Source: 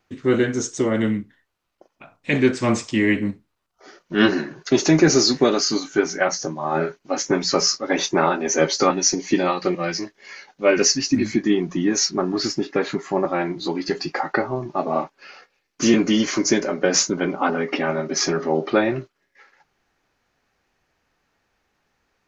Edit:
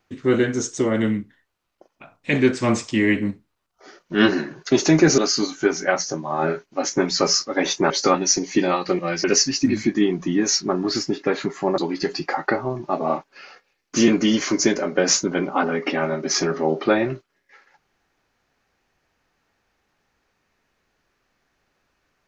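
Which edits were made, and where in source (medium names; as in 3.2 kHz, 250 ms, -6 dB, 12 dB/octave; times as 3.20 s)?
5.18–5.51 s: delete
8.23–8.66 s: delete
10.00–10.73 s: delete
13.27–13.64 s: delete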